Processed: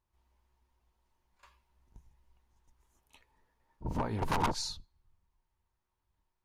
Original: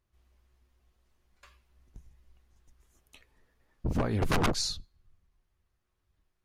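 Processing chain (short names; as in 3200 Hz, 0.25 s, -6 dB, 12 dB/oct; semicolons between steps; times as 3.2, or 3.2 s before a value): bell 920 Hz +14.5 dB 0.28 oct; pre-echo 38 ms -14 dB; gain -6 dB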